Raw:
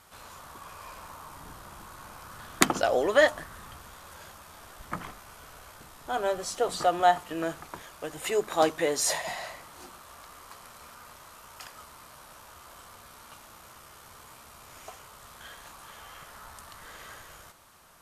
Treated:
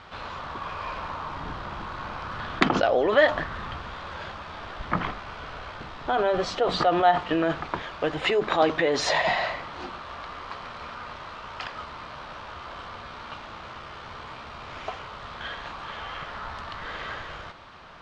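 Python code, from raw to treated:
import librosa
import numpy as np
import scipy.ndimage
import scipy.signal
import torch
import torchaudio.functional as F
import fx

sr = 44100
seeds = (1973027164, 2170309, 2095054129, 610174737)

p1 = scipy.signal.sosfilt(scipy.signal.butter(4, 4000.0, 'lowpass', fs=sr, output='sos'), x)
p2 = fx.over_compress(p1, sr, threshold_db=-34.0, ratio=-1.0)
p3 = p1 + (p2 * 10.0 ** (2.0 / 20.0))
y = p3 * 10.0 ** (1.0 / 20.0)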